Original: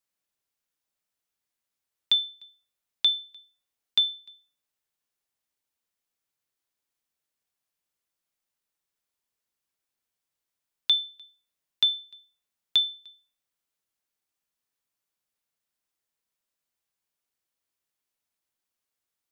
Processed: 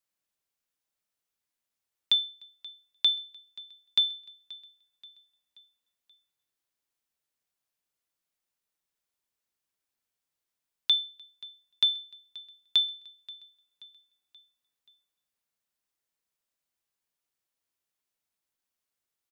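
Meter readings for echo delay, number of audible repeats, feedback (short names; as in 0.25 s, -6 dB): 0.53 s, 3, 49%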